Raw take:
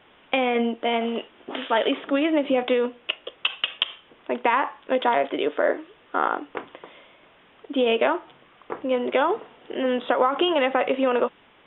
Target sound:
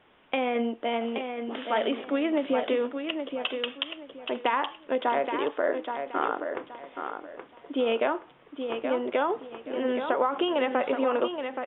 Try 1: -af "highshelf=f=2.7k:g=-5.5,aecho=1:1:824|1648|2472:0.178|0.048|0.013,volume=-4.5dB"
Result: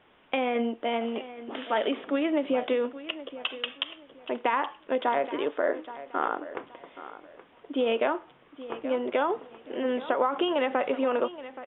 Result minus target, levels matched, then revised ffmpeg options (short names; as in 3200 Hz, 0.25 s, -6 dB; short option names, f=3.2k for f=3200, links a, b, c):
echo-to-direct -8 dB
-af "highshelf=f=2.7k:g=-5.5,aecho=1:1:824|1648|2472:0.447|0.121|0.0326,volume=-4.5dB"